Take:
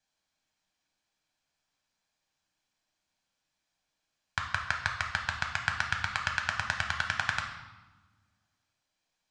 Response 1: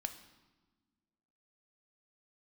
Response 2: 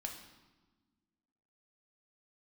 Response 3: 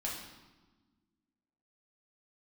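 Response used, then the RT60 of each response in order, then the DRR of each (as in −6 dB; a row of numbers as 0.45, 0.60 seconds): 2; 1.3, 1.3, 1.3 seconds; 8.0, 2.0, −4.0 decibels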